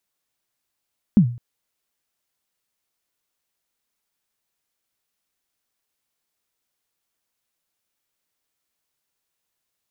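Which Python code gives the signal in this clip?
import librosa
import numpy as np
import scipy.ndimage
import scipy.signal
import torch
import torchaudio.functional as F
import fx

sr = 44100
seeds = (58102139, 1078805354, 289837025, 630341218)

y = fx.drum_kick(sr, seeds[0], length_s=0.21, level_db=-6.0, start_hz=230.0, end_hz=120.0, sweep_ms=87.0, decay_s=0.42, click=False)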